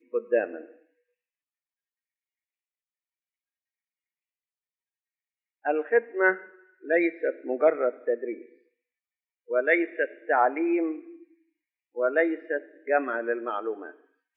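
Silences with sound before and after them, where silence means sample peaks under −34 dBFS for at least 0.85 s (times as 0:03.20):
0:00.61–0:05.65
0:08.41–0:09.50
0:10.99–0:11.97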